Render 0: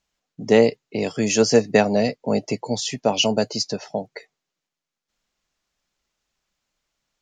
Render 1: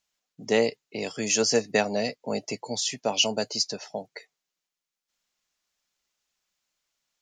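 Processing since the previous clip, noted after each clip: tilt EQ +2 dB/octave; trim -5.5 dB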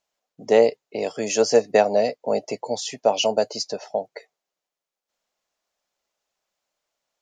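peaking EQ 610 Hz +13 dB 1.7 oct; trim -3 dB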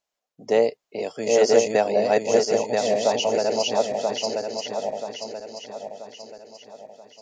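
backward echo that repeats 491 ms, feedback 65%, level 0 dB; trim -3.5 dB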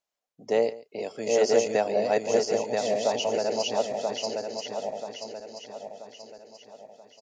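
delay 139 ms -19 dB; trim -4.5 dB

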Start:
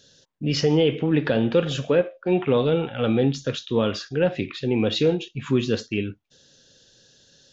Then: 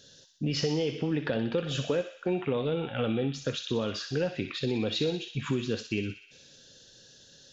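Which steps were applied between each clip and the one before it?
compression 4:1, threshold -27 dBFS, peak gain reduction 11 dB; feedback echo behind a high-pass 62 ms, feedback 66%, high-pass 2.1 kHz, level -6.5 dB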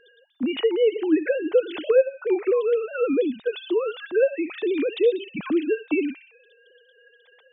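formants replaced by sine waves; trim +7.5 dB

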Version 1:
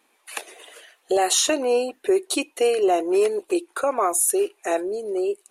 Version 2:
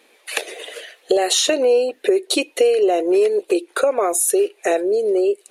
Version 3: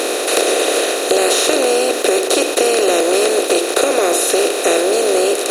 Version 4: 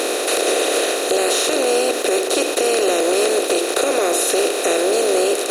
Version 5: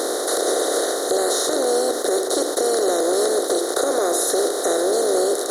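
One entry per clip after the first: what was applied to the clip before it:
ten-band graphic EQ 500 Hz +11 dB, 1 kHz -5 dB, 2 kHz +5 dB, 4 kHz +6 dB; compression 3:1, threshold -22 dBFS, peak gain reduction 11.5 dB; trim +5.5 dB
spectral levelling over time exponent 0.2; waveshaping leveller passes 1; trim -8 dB
loudness maximiser +5.5 dB; trim -7.5 dB
Butterworth band-stop 2.6 kHz, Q 1.3; trim -2 dB

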